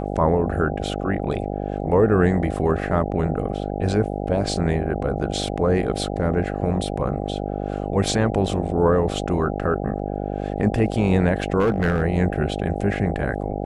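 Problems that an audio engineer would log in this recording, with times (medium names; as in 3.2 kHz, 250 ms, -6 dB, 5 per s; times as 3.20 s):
buzz 50 Hz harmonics 16 -27 dBFS
11.59–12.03 s: clipped -14.5 dBFS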